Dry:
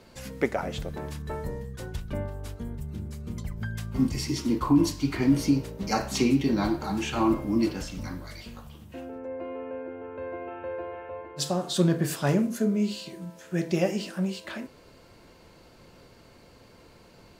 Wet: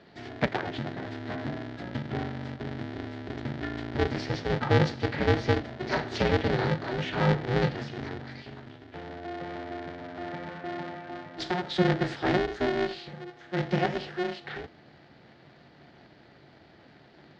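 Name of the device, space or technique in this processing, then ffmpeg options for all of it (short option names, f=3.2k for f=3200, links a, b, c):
ring modulator pedal into a guitar cabinet: -af "aeval=exprs='val(0)*sgn(sin(2*PI*180*n/s))':c=same,highpass=100,equalizer=f=140:t=q:w=4:g=6,equalizer=f=500:t=q:w=4:g=-4,equalizer=f=1.1k:t=q:w=4:g=-8,equalizer=f=1.8k:t=q:w=4:g=4,equalizer=f=2.6k:t=q:w=4:g=-5,lowpass=f=4.1k:w=0.5412,lowpass=f=4.1k:w=1.3066"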